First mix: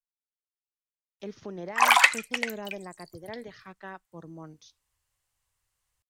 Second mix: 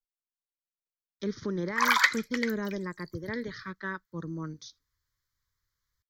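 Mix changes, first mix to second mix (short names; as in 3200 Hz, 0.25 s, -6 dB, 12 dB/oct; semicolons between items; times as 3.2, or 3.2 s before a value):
speech +9.5 dB; master: add fixed phaser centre 2700 Hz, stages 6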